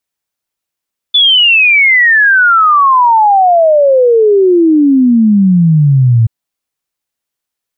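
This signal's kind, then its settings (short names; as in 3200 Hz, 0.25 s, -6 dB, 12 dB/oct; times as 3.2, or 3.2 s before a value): log sweep 3500 Hz -> 110 Hz 5.13 s -4 dBFS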